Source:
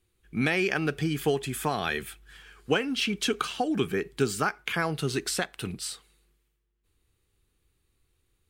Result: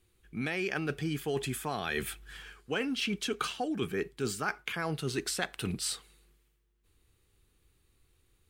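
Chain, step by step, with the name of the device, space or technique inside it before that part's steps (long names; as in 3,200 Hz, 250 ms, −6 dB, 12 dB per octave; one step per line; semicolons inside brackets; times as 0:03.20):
compression on the reversed sound (reversed playback; downward compressor 12 to 1, threshold −32 dBFS, peak gain reduction 14 dB; reversed playback)
level +3 dB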